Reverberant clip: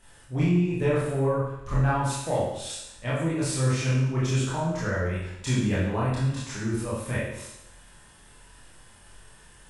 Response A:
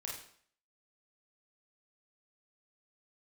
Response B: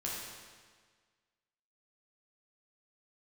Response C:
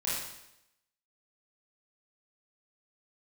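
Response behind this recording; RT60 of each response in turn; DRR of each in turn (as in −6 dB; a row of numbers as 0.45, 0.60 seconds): C; 0.55, 1.6, 0.85 seconds; −3.0, −5.0, −9.0 decibels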